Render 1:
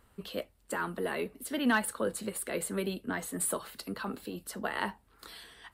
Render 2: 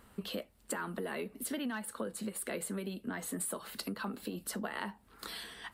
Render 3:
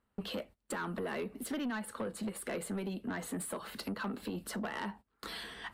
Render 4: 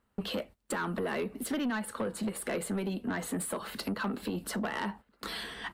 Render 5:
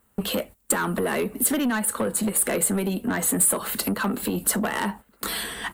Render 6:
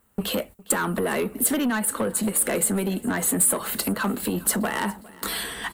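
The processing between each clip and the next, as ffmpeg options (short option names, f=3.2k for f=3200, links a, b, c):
-af "equalizer=f=210:t=o:w=0.53:g=6.5,acompressor=threshold=-39dB:ratio=12,lowshelf=f=160:g=-4.5,volume=5dB"
-af "agate=range=-23dB:threshold=-52dB:ratio=16:detection=peak,aemphasis=mode=reproduction:type=cd,asoftclip=type=tanh:threshold=-34.5dB,volume=3.5dB"
-filter_complex "[0:a]asplit=2[a][b];[b]adelay=1341,volume=-25dB,highshelf=f=4k:g=-30.2[c];[a][c]amix=inputs=2:normalize=0,volume=4.5dB"
-af "aexciter=amount=2:drive=9.5:freq=7k,volume=8dB"
-af "aecho=1:1:408|816|1224|1632:0.0841|0.0421|0.021|0.0105"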